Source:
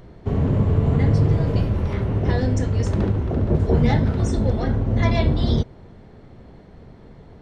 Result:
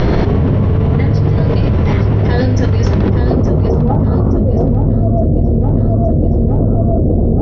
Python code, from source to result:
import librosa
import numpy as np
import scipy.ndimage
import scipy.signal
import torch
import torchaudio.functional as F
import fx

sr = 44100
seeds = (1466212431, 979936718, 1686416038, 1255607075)

y = fx.ellip_lowpass(x, sr, hz=fx.steps((0.0, 5700.0), (3.09, 1300.0), (4.37, 690.0)), order=4, stop_db=40)
y = fx.echo_feedback(y, sr, ms=870, feedback_pct=35, wet_db=-10.5)
y = fx.env_flatten(y, sr, amount_pct=100)
y = F.gain(torch.from_numpy(y), 3.5).numpy()